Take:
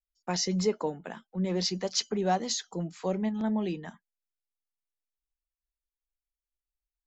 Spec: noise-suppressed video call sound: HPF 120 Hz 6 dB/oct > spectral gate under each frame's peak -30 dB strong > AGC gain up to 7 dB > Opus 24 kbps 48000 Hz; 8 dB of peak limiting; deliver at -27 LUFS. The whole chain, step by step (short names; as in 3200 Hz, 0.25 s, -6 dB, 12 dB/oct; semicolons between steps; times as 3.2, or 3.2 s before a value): limiter -23.5 dBFS; HPF 120 Hz 6 dB/oct; spectral gate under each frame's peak -30 dB strong; AGC gain up to 7 dB; gain +7.5 dB; Opus 24 kbps 48000 Hz